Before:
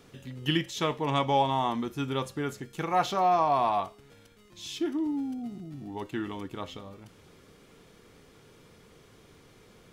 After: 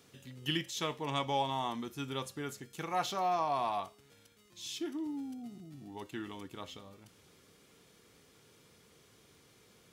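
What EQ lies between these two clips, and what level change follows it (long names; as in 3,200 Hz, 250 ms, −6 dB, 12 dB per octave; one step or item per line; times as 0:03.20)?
high-pass filter 61 Hz
high-shelf EQ 3,000 Hz +9 dB
−8.5 dB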